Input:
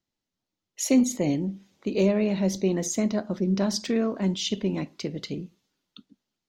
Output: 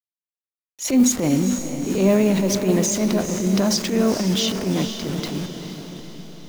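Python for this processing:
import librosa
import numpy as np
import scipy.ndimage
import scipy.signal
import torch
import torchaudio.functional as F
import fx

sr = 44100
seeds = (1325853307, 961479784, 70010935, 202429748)

y = fx.delta_hold(x, sr, step_db=-38.0)
y = fx.transient(y, sr, attack_db=-11, sustain_db=5)
y = fx.echo_diffused(y, sr, ms=464, feedback_pct=53, wet_db=-8)
y = y * 10.0 ** (6.5 / 20.0)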